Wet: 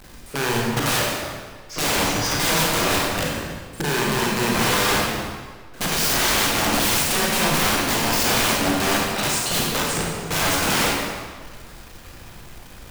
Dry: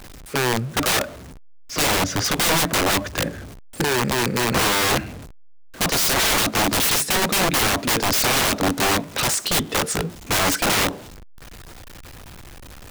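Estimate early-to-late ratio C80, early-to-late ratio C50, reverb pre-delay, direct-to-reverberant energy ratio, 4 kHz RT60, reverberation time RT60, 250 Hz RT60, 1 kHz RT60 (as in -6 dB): 1.0 dB, -1.5 dB, 29 ms, -3.5 dB, 1.3 s, 1.6 s, 1.6 s, 1.6 s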